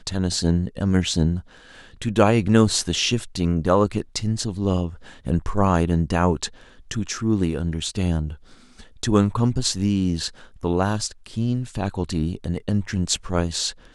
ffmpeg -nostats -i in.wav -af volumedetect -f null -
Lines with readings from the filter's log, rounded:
mean_volume: -22.5 dB
max_volume: -1.2 dB